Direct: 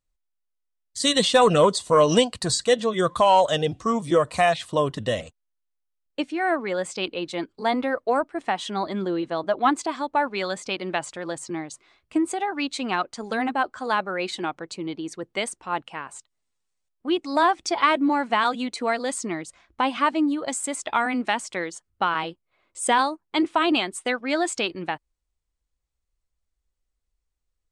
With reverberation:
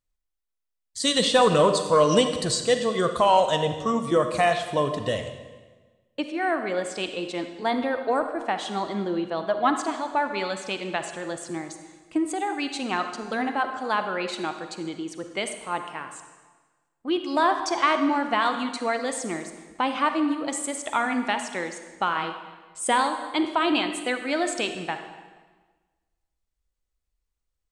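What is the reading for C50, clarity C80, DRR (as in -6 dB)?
7.5 dB, 9.5 dB, 7.0 dB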